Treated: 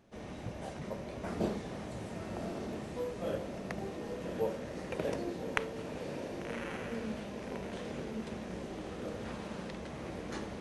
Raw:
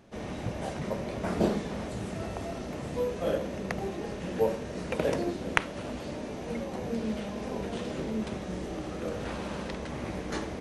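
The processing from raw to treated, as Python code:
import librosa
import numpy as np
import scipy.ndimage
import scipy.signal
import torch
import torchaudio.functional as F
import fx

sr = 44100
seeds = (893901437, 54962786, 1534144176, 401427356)

y = fx.echo_diffused(x, sr, ms=1142, feedback_pct=42, wet_db=-5)
y = y * 10.0 ** (-7.5 / 20.0)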